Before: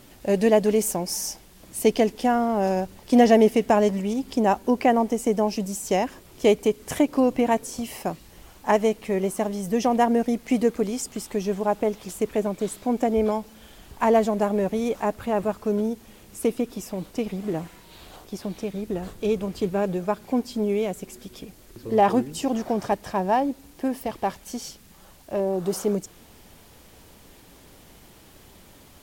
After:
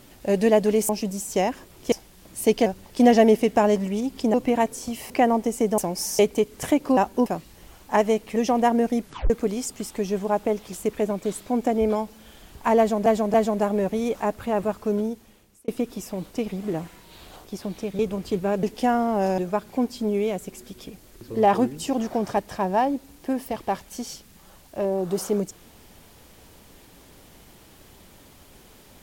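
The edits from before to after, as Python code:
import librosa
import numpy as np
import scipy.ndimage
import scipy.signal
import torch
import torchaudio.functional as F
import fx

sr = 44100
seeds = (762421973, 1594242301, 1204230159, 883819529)

y = fx.edit(x, sr, fx.swap(start_s=0.89, length_s=0.41, other_s=5.44, other_length_s=1.03),
    fx.move(start_s=2.04, length_s=0.75, to_s=19.93),
    fx.swap(start_s=4.47, length_s=0.29, other_s=7.25, other_length_s=0.76),
    fx.cut(start_s=9.11, length_s=0.61),
    fx.tape_stop(start_s=10.38, length_s=0.28),
    fx.repeat(start_s=14.14, length_s=0.28, count=3),
    fx.fade_out_span(start_s=15.75, length_s=0.73),
    fx.cut(start_s=18.79, length_s=0.5), tone=tone)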